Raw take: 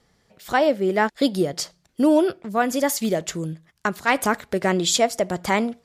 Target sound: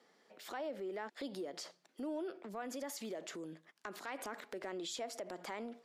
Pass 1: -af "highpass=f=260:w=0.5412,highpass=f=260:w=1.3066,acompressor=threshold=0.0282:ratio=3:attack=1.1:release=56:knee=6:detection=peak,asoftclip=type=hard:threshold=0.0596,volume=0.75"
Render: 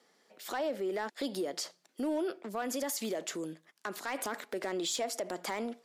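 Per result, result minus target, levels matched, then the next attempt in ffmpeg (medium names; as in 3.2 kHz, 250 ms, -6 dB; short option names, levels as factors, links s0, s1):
compression: peak gain reduction -7.5 dB; 8 kHz band +2.5 dB
-af "highpass=f=260:w=0.5412,highpass=f=260:w=1.3066,acompressor=threshold=0.00708:ratio=3:attack=1.1:release=56:knee=6:detection=peak,asoftclip=type=hard:threshold=0.0596,volume=0.75"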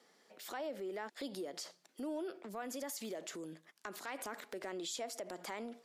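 8 kHz band +2.5 dB
-af "highpass=f=260:w=0.5412,highpass=f=260:w=1.3066,highshelf=f=5800:g=-10,acompressor=threshold=0.00708:ratio=3:attack=1.1:release=56:knee=6:detection=peak,asoftclip=type=hard:threshold=0.0596,volume=0.75"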